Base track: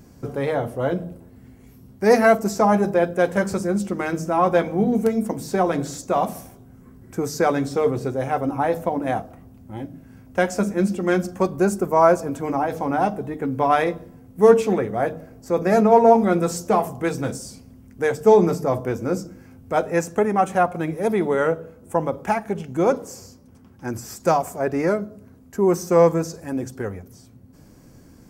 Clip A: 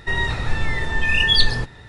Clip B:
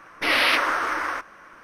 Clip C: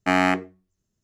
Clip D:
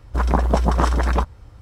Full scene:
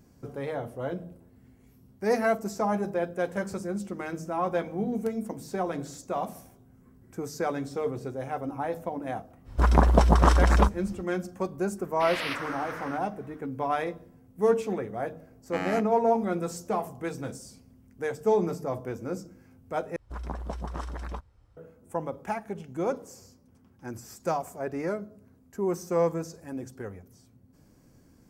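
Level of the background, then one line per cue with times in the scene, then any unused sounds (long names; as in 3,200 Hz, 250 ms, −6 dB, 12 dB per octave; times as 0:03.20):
base track −10 dB
0:09.44: mix in D −1 dB, fades 0.05 s
0:11.78: mix in B −13 dB
0:15.46: mix in C −13.5 dB
0:19.96: overwrite with D −17.5 dB
not used: A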